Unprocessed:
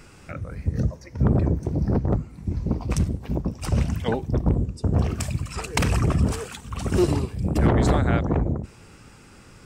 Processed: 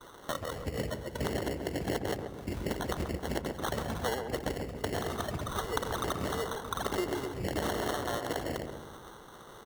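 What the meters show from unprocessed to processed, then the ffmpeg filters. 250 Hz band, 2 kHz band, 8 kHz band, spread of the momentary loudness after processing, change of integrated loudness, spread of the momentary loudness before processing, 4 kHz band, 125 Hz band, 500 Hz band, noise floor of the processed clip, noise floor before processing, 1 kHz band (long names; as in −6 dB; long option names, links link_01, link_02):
−12.0 dB, −3.5 dB, −5.0 dB, 6 LU, −10.5 dB, 10 LU, −1.5 dB, −17.0 dB, −5.0 dB, −50 dBFS, −48 dBFS, −3.5 dB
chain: -filter_complex "[0:a]agate=range=-33dB:threshold=-44dB:ratio=3:detection=peak,acrossover=split=390 2100:gain=0.1 1 0.126[link_01][link_02][link_03];[link_01][link_02][link_03]amix=inputs=3:normalize=0,acompressor=threshold=-38dB:ratio=12,acrusher=samples=18:mix=1:aa=0.000001,asplit=2[link_04][link_05];[link_05]adelay=135,lowpass=frequency=1000:poles=1,volume=-5dB,asplit=2[link_06][link_07];[link_07]adelay=135,lowpass=frequency=1000:poles=1,volume=0.53,asplit=2[link_08][link_09];[link_09]adelay=135,lowpass=frequency=1000:poles=1,volume=0.53,asplit=2[link_10][link_11];[link_11]adelay=135,lowpass=frequency=1000:poles=1,volume=0.53,asplit=2[link_12][link_13];[link_13]adelay=135,lowpass=frequency=1000:poles=1,volume=0.53,asplit=2[link_14][link_15];[link_15]adelay=135,lowpass=frequency=1000:poles=1,volume=0.53,asplit=2[link_16][link_17];[link_17]adelay=135,lowpass=frequency=1000:poles=1,volume=0.53[link_18];[link_06][link_08][link_10][link_12][link_14][link_16][link_18]amix=inputs=7:normalize=0[link_19];[link_04][link_19]amix=inputs=2:normalize=0,volume=8dB"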